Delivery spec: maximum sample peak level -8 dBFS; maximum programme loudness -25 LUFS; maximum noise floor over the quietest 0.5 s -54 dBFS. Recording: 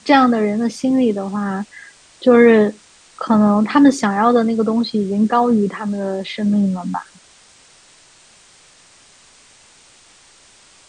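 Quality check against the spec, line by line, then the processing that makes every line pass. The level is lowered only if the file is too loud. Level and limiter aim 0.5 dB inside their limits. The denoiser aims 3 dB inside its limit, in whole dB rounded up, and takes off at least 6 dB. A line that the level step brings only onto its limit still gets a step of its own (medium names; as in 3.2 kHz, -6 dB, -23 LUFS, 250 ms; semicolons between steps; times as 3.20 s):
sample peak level -1.5 dBFS: fail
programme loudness -16.0 LUFS: fail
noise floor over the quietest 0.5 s -49 dBFS: fail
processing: trim -9.5 dB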